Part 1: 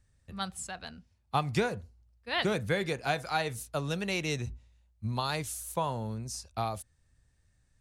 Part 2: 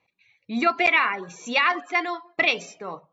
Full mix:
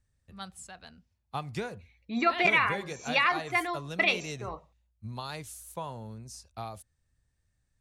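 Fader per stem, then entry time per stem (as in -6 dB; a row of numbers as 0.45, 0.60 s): -6.5, -4.5 dB; 0.00, 1.60 s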